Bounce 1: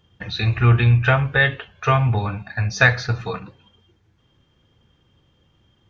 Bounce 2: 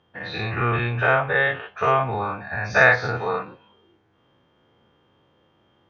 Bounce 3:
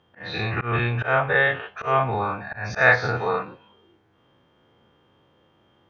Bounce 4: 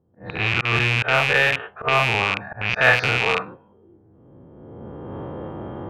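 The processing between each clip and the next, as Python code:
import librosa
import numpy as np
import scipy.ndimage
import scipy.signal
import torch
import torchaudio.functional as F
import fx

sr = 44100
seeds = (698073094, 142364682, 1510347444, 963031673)

y1 = fx.spec_dilate(x, sr, span_ms=120)
y1 = fx.rider(y1, sr, range_db=5, speed_s=2.0)
y1 = fx.bandpass_q(y1, sr, hz=740.0, q=0.68)
y1 = y1 * 10.0 ** (-3.0 / 20.0)
y2 = fx.auto_swell(y1, sr, attack_ms=147.0)
y2 = y2 * 10.0 ** (1.0 / 20.0)
y3 = fx.rattle_buzz(y2, sr, strikes_db=-34.0, level_db=-8.0)
y3 = fx.recorder_agc(y3, sr, target_db=-9.5, rise_db_per_s=17.0, max_gain_db=30)
y3 = fx.env_lowpass(y3, sr, base_hz=390.0, full_db=-14.0)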